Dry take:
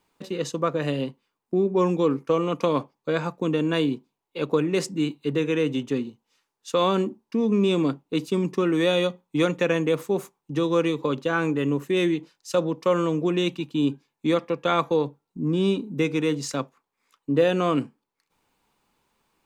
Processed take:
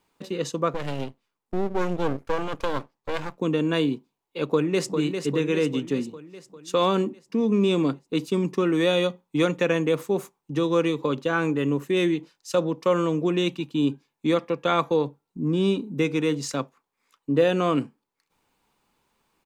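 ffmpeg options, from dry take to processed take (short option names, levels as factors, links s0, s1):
-filter_complex "[0:a]asettb=1/sr,asplit=3[s0][s1][s2];[s0]atrim=end=0.744[s3];[s1]atrim=start=0.74:end=3.38,asetpts=PTS-STARTPTS,afade=t=in:d=0.004:c=qsin,afade=t=out:st=2.636:d=0.004:c=qsin,aeval=exprs='max(val(0),0)':c=same[s4];[s2]atrim=start=3.376[s5];[s3][s4]acrossfade=d=0.004:c1=hsin:c2=qsin[s6];[s6][s5]acrossfade=d=0.004:c1=qsin:c2=hsin,asplit=2[s7][s8];[s8]afade=t=in:st=4.46:d=0.01,afade=t=out:st=4.97:d=0.01,aecho=0:1:400|800|1200|1600|2000|2400|2800|3200:0.473151|0.283891|0.170334|0.102201|0.0613204|0.0367922|0.0220753|0.0132452[s9];[s7][s9]amix=inputs=2:normalize=0"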